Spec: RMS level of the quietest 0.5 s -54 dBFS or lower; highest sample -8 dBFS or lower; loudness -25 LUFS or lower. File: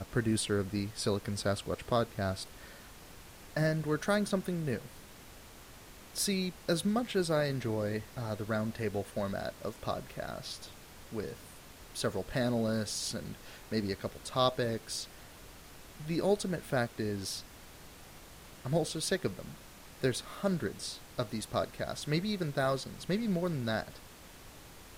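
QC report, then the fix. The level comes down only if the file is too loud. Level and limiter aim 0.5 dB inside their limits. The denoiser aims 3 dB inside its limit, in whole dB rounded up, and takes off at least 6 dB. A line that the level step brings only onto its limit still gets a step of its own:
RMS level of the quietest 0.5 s -52 dBFS: fail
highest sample -13.5 dBFS: OK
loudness -34.0 LUFS: OK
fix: denoiser 6 dB, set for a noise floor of -52 dBFS

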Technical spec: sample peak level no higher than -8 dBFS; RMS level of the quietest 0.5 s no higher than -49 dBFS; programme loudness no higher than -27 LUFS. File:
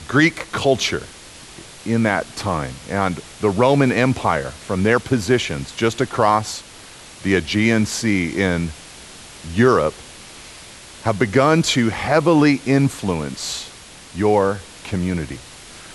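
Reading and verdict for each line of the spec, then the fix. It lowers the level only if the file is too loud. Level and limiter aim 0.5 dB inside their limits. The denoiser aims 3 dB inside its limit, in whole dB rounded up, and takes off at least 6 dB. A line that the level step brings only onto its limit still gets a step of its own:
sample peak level -2.5 dBFS: fail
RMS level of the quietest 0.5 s -41 dBFS: fail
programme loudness -19.0 LUFS: fail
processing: gain -8.5 dB

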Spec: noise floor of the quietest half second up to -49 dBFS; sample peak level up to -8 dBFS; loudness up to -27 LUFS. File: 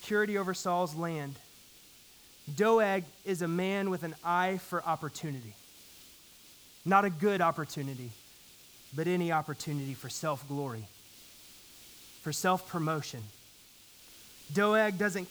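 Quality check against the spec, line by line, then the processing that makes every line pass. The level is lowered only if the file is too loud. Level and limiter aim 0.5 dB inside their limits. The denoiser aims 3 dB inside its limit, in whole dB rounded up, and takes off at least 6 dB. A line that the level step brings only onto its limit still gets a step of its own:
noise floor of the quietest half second -57 dBFS: OK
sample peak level -11.0 dBFS: OK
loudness -31.5 LUFS: OK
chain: none

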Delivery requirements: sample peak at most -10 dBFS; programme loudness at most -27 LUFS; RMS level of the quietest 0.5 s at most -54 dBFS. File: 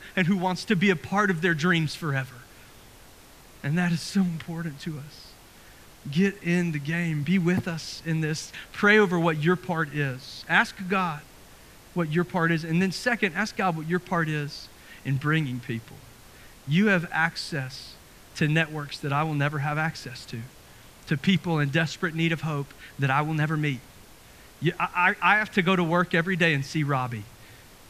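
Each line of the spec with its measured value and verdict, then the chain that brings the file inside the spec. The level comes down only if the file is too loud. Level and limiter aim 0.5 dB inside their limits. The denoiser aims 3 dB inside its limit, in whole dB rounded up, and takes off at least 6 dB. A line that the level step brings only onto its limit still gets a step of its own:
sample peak -4.5 dBFS: fail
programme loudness -25.5 LUFS: fail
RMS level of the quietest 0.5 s -50 dBFS: fail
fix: denoiser 6 dB, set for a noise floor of -50 dBFS; gain -2 dB; limiter -10.5 dBFS

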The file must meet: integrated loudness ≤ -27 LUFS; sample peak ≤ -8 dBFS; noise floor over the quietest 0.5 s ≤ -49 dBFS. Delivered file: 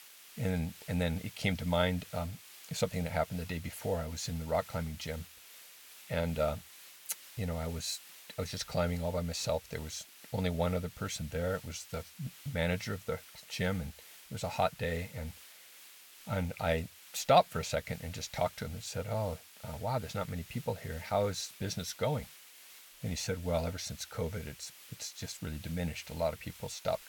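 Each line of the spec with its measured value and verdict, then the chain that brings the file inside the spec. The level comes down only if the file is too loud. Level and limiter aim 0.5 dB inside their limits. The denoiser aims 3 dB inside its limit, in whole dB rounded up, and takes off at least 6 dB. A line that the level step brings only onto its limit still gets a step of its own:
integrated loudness -36.0 LUFS: OK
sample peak -11.0 dBFS: OK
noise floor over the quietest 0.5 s -55 dBFS: OK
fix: none

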